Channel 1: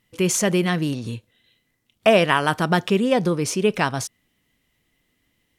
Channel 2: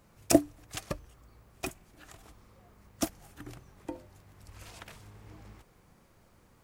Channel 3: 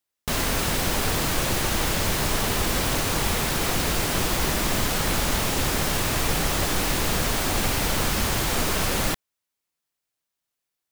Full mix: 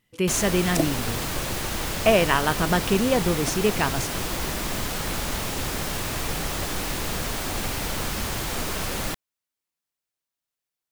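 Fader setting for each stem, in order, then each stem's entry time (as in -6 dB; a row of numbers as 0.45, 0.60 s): -3.0, -2.5, -4.5 dB; 0.00, 0.45, 0.00 s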